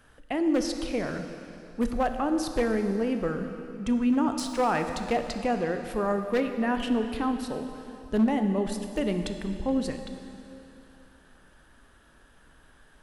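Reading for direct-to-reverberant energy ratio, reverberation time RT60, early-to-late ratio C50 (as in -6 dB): 6.5 dB, 2.9 s, 7.0 dB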